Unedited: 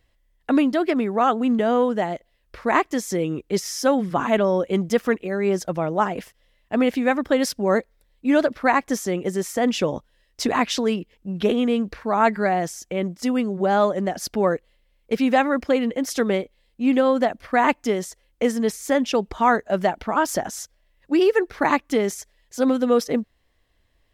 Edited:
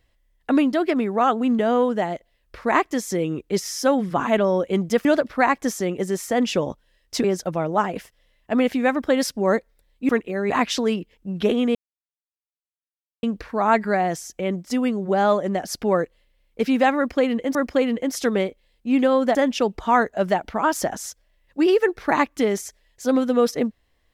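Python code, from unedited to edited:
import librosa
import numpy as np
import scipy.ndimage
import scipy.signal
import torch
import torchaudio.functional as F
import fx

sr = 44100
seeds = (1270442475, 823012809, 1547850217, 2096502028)

y = fx.edit(x, sr, fx.swap(start_s=5.05, length_s=0.41, other_s=8.31, other_length_s=2.19),
    fx.insert_silence(at_s=11.75, length_s=1.48),
    fx.repeat(start_s=15.49, length_s=0.58, count=2),
    fx.cut(start_s=17.29, length_s=1.59), tone=tone)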